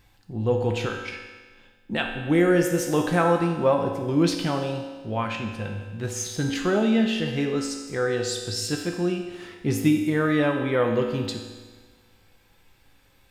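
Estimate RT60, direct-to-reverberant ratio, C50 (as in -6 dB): 1.4 s, 2.0 dB, 5.0 dB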